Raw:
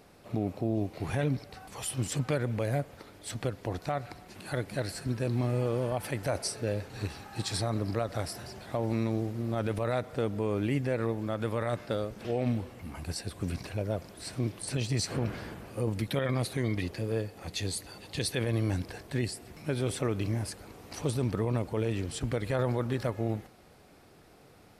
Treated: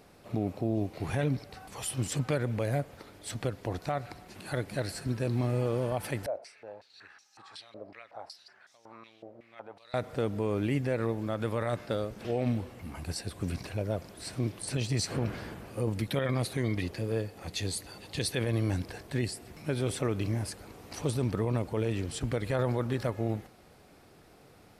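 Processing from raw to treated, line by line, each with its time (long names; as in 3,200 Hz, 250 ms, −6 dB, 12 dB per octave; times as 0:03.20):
0:06.26–0:09.94: band-pass on a step sequencer 5.4 Hz 600–5,900 Hz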